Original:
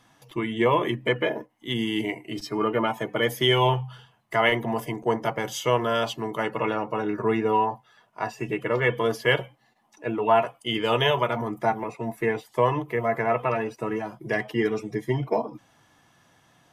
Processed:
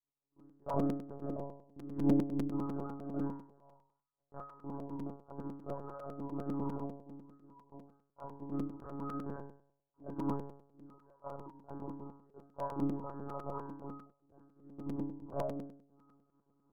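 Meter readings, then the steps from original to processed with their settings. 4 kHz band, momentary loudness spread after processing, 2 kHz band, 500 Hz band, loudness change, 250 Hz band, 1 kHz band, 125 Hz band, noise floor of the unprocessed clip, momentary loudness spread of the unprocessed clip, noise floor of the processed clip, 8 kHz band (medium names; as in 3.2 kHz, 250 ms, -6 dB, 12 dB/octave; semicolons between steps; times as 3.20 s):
under -35 dB, 19 LU, -35.0 dB, -19.5 dB, -14.5 dB, -8.0 dB, -19.5 dB, -12.5 dB, -63 dBFS, 10 LU, -85 dBFS, under -25 dB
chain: local Wiener filter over 15 samples; gate with hold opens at -54 dBFS; bass shelf 410 Hz +6 dB; chorus 0.18 Hz, delay 18.5 ms, depth 5.1 ms; trance gate "...x.xx.xxxxxxx." 68 bpm -24 dB; saturation -20.5 dBFS, distortion -13 dB; rippled Chebyshev low-pass 1.5 kHz, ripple 6 dB; inharmonic resonator 310 Hz, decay 0.58 s, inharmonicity 0.002; monotone LPC vocoder at 8 kHz 140 Hz; crackling interface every 0.10 s, samples 256, repeat, from 0.39 s; trim +11 dB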